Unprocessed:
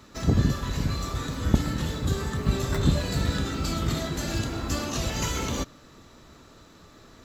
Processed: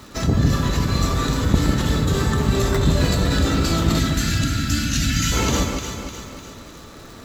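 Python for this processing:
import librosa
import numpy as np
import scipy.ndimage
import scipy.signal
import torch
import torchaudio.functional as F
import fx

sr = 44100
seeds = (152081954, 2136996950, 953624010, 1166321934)

p1 = fx.spec_box(x, sr, start_s=3.99, length_s=1.33, low_hz=320.0, high_hz=1300.0, gain_db=-21)
p2 = fx.over_compress(p1, sr, threshold_db=-29.0, ratio=-1.0)
p3 = p1 + (p2 * 10.0 ** (0.0 / 20.0))
p4 = fx.echo_alternate(p3, sr, ms=151, hz=1200.0, feedback_pct=70, wet_db=-4)
p5 = fx.dmg_crackle(p4, sr, seeds[0], per_s=550.0, level_db=-39.0)
y = p5 * 10.0 ** (1.5 / 20.0)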